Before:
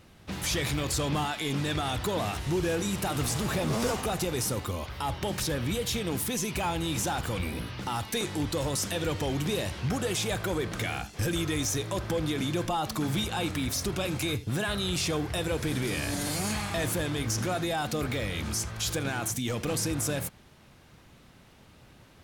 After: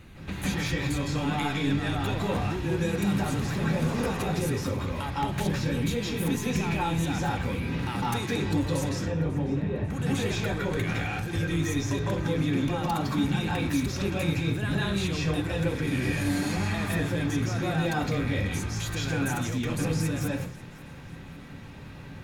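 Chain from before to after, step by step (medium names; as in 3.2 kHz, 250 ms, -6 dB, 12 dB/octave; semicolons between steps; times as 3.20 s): bass shelf 120 Hz +12 dB; compression 6:1, threshold -33 dBFS, peak gain reduction 13 dB; 8.89–9.90 s: tape spacing loss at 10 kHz 43 dB; thinning echo 544 ms, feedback 46%, level -20.5 dB; reverberation RT60 0.45 s, pre-delay 152 ms, DRR -4.5 dB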